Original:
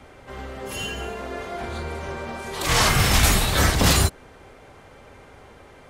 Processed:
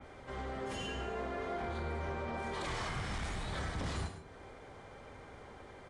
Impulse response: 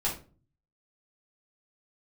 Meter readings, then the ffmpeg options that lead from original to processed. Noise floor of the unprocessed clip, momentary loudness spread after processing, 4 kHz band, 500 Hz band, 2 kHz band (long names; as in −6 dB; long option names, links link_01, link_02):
−48 dBFS, 14 LU, −21.5 dB, −11.5 dB, −17.0 dB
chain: -filter_complex "[0:a]highshelf=frequency=6100:gain=-4.5,acompressor=threshold=-29dB:ratio=6,asoftclip=type=hard:threshold=-28dB,asplit=2[link_01][link_02];[link_02]highpass=130[link_03];[1:a]atrim=start_sample=2205,adelay=91[link_04];[link_03][link_04]afir=irnorm=-1:irlink=0,volume=-14dB[link_05];[link_01][link_05]amix=inputs=2:normalize=0,aresample=22050,aresample=44100,bandreject=frequency=2700:width=12,adynamicequalizer=threshold=0.00316:dfrequency=3500:dqfactor=0.7:tfrequency=3500:tqfactor=0.7:attack=5:release=100:ratio=0.375:range=3.5:mode=cutabove:tftype=highshelf,volume=-5.5dB"